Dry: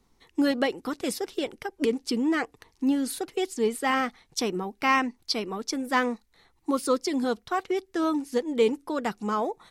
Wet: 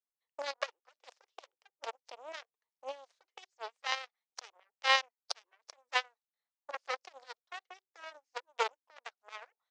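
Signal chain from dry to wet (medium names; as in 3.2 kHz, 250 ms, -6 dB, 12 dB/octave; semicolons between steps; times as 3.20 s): Chebyshev shaper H 2 -8 dB, 3 -9 dB, 5 -41 dB, 8 -32 dB, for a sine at -10.5 dBFS; elliptic band-pass 550–6500 Hz, stop band 50 dB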